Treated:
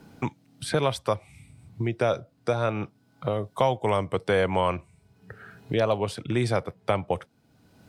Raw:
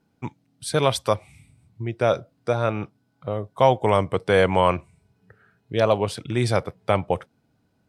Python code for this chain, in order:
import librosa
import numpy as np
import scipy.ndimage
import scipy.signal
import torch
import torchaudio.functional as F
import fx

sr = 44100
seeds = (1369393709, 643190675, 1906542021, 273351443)

y = fx.band_squash(x, sr, depth_pct=70)
y = y * librosa.db_to_amplitude(-4.0)